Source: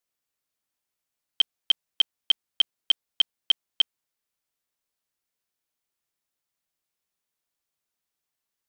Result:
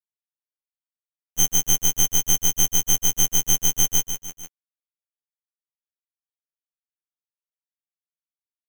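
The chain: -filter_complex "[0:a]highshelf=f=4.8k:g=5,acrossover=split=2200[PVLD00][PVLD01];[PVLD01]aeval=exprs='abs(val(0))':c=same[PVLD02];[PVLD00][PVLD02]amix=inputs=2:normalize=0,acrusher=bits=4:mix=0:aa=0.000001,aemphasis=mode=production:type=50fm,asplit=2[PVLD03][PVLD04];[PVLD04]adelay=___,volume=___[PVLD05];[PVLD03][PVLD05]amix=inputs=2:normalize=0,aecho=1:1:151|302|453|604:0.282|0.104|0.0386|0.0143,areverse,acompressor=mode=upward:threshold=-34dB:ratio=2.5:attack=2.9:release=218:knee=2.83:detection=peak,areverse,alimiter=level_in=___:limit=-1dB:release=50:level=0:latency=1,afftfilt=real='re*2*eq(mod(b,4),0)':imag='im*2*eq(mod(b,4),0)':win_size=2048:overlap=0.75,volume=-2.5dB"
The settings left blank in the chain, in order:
29, -2dB, 13.5dB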